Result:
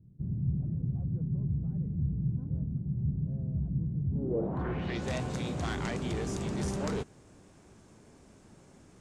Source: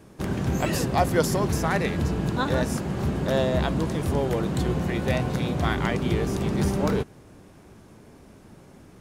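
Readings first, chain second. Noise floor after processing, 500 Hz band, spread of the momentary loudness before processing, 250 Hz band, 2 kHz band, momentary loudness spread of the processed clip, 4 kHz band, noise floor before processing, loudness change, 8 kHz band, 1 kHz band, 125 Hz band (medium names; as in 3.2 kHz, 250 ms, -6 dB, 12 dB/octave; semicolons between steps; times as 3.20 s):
-58 dBFS, -12.5 dB, 4 LU, -8.5 dB, -13.0 dB, 2 LU, -11.5 dB, -51 dBFS, -8.0 dB, -11.5 dB, -14.5 dB, -5.0 dB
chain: overload inside the chain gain 21 dB; low-pass sweep 140 Hz -> 7.8 kHz, 4.09–5.06 s; trim -7.5 dB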